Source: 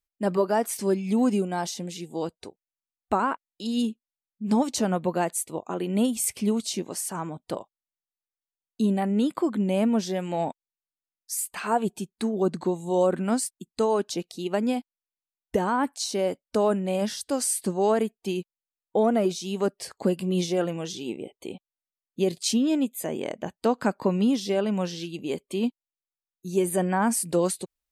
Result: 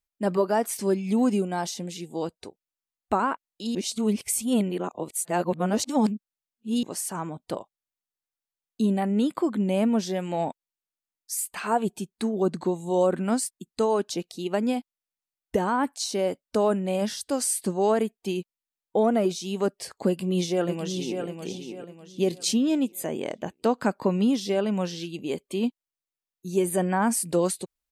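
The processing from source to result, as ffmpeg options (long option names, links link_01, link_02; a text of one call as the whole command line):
ffmpeg -i in.wav -filter_complex "[0:a]asplit=2[link_01][link_02];[link_02]afade=type=in:start_time=20.08:duration=0.01,afade=type=out:start_time=21.24:duration=0.01,aecho=0:1:600|1200|1800|2400:0.473151|0.165603|0.057961|0.0202864[link_03];[link_01][link_03]amix=inputs=2:normalize=0,asplit=3[link_04][link_05][link_06];[link_04]atrim=end=3.752[link_07];[link_05]atrim=start=3.748:end=6.832,asetpts=PTS-STARTPTS,areverse[link_08];[link_06]atrim=start=6.828[link_09];[link_07][link_08]acrossfade=duration=0.004:curve1=hsin:curve2=hsin[link_10];[link_10][link_09]acrossfade=duration=0.004:curve1=hsin:curve2=hsin" out.wav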